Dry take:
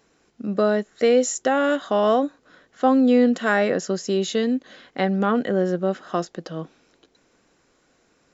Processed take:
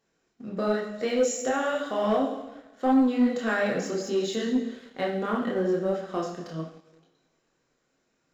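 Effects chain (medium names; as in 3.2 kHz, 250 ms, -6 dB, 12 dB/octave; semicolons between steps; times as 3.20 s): two-slope reverb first 0.87 s, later 2.2 s, DRR 1.5 dB; chorus voices 4, 0.89 Hz, delay 27 ms, depth 4.5 ms; waveshaping leveller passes 1; trim -8 dB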